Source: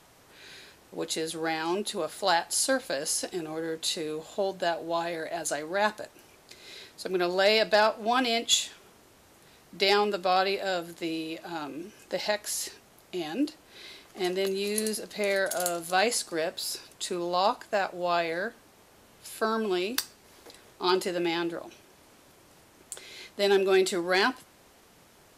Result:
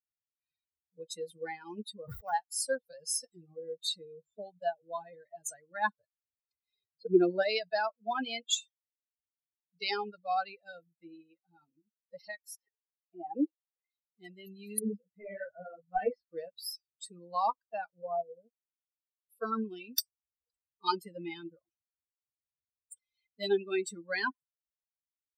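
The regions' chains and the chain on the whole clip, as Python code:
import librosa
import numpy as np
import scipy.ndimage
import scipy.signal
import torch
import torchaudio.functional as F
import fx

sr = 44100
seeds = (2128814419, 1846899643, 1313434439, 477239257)

y = fx.chain(x, sr, fx.median_filter(points=15),
    fx.sustainer(db_per_s=28.0), at=(1.94, 2.34))
y = fx.chain(y, sr, fx.lowpass(hz=5600.0, slope=12),
    fx.peak_eq(hz=320.0, db=8.5, octaves=1.7), at=(6.73, 7.43))
y = fx.chain(y, sr, fx.bandpass_edges(low_hz=130.0, high_hz=2600.0),
    fx.peak_eq(hz=700.0, db=12.5, octaves=1.5), at=(12.55, 13.9))
y = fx.chain(y, sr, fx.lowpass(hz=2200.0, slope=12),
    fx.leveller(passes=1),
    fx.detune_double(cents=48), at=(14.79, 16.33))
y = fx.chain(y, sr, fx.lowpass(hz=1000.0, slope=24),
    fx.upward_expand(threshold_db=-48.0, expansion=1.5), at=(18.02, 19.3))
y = fx.bin_expand(y, sr, power=3.0)
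y = fx.rider(y, sr, range_db=4, speed_s=0.5)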